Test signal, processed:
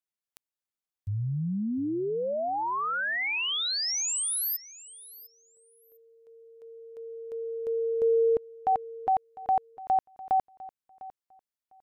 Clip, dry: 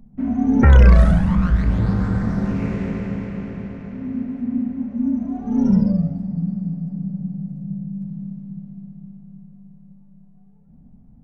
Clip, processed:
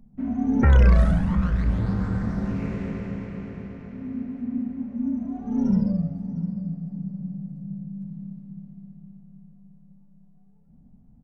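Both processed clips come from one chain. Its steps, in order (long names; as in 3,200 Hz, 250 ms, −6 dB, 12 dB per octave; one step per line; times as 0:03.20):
repeating echo 702 ms, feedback 17%, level −18.5 dB
level −5.5 dB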